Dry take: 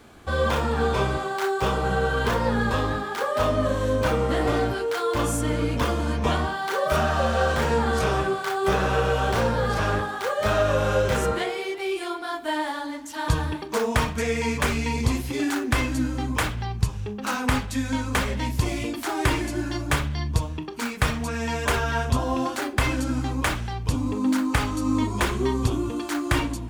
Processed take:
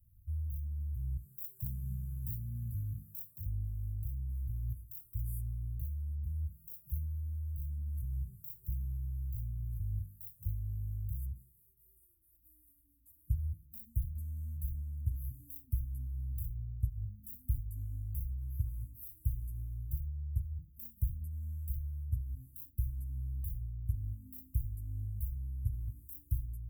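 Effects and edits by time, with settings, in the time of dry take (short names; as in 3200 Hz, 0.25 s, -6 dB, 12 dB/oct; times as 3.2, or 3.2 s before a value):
1.24–3.46 HPF 130 Hz
whole clip: inverse Chebyshev band-stop 440–5000 Hz, stop band 70 dB; low shelf 460 Hz -7 dB; vocal rider 0.5 s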